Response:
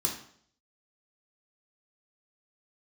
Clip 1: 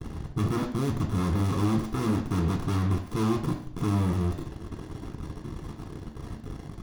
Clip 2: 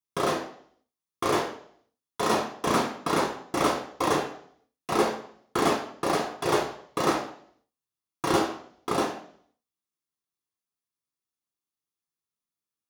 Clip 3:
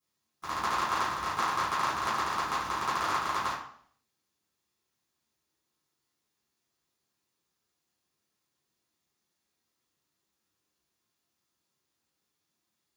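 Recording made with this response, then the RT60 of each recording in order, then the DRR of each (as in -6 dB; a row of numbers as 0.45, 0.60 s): 2; 0.60, 0.60, 0.60 s; 3.5, -1.0, -10.5 dB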